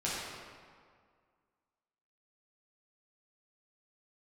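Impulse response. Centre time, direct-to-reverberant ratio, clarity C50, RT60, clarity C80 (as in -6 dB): 122 ms, -8.5 dB, -2.5 dB, 2.0 s, -0.5 dB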